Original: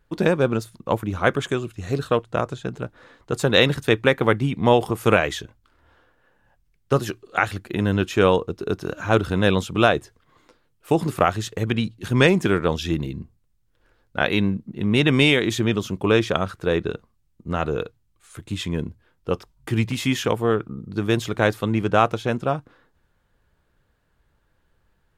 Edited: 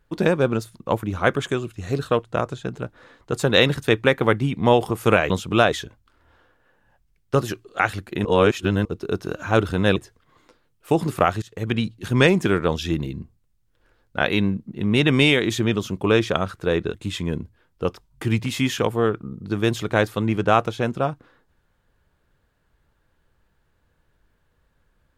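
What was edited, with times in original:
7.83–8.43 reverse
9.54–9.96 move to 5.3
11.42–11.73 fade in, from -22 dB
16.94–18.4 cut

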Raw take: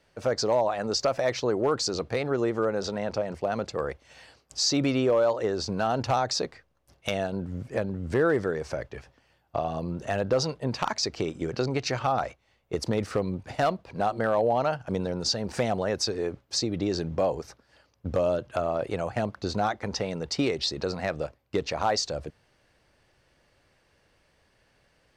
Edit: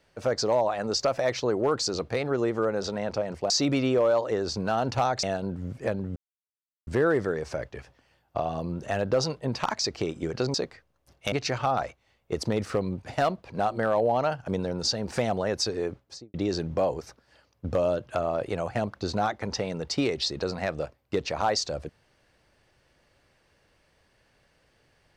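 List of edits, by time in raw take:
3.5–4.62 cut
6.35–7.13 move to 11.73
8.06 insert silence 0.71 s
16.32–16.75 studio fade out

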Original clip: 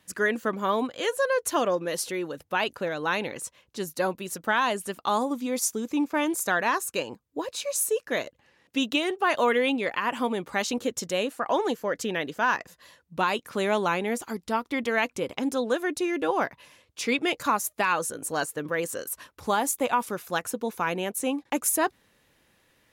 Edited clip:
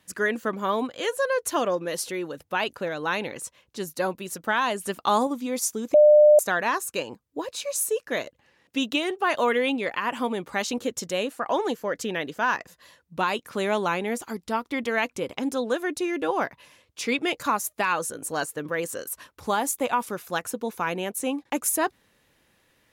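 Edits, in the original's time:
4.82–5.27 gain +3.5 dB
5.94–6.39 bleep 600 Hz -10.5 dBFS

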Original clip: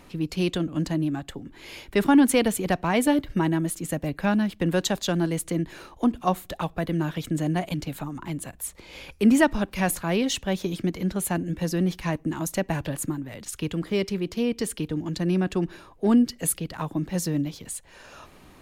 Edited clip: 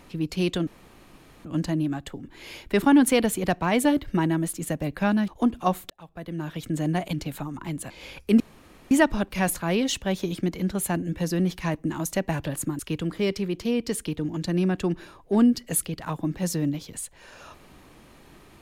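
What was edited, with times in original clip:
0.67 insert room tone 0.78 s
4.5–5.89 cut
6.51–7.49 fade in
8.51–8.82 cut
9.32 insert room tone 0.51 s
13.2–13.51 cut

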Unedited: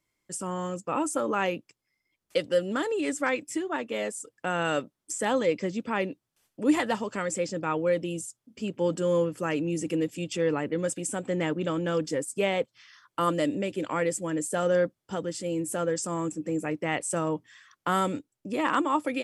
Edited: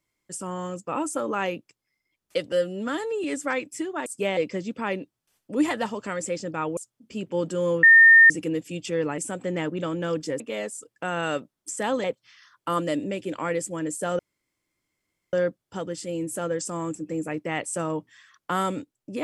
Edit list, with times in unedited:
2.52–3 stretch 1.5×
3.82–5.46 swap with 12.24–12.55
7.86–8.24 cut
9.3–9.77 bleep 1820 Hz -9 dBFS
10.65–11.02 cut
14.7 insert room tone 1.14 s

